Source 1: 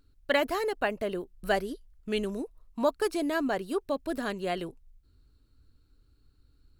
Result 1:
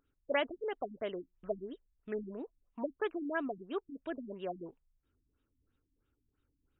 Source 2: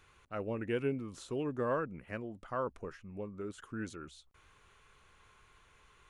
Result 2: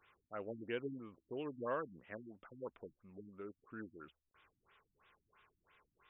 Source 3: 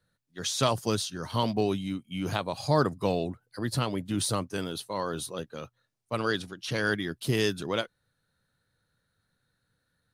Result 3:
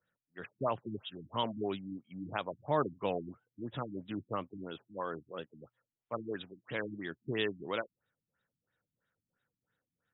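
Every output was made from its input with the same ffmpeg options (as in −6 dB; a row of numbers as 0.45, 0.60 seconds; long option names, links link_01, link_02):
-af "aemphasis=mode=production:type=bsi,afftfilt=real='re*lt(b*sr/1024,300*pow(3900/300,0.5+0.5*sin(2*PI*3*pts/sr)))':imag='im*lt(b*sr/1024,300*pow(3900/300,0.5+0.5*sin(2*PI*3*pts/sr)))':win_size=1024:overlap=0.75,volume=-4.5dB"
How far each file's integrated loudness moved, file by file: −8.5, −7.5, −8.5 LU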